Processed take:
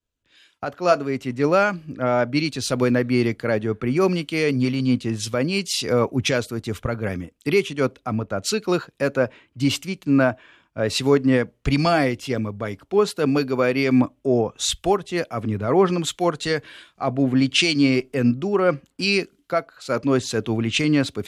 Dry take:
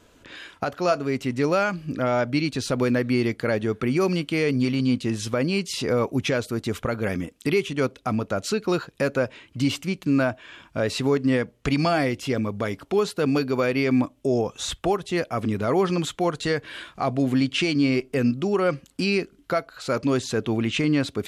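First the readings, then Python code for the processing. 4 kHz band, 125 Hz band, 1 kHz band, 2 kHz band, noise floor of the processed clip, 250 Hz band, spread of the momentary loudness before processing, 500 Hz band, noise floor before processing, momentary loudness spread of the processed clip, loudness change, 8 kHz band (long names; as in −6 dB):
+5.0 dB, +2.0 dB, +2.5 dB, +2.5 dB, −66 dBFS, +2.0 dB, 6 LU, +2.5 dB, −57 dBFS, 8 LU, +2.5 dB, +5.5 dB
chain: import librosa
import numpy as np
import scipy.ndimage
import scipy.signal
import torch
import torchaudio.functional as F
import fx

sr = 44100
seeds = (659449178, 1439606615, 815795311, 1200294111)

y = fx.band_widen(x, sr, depth_pct=100)
y = F.gain(torch.from_numpy(y), 2.5).numpy()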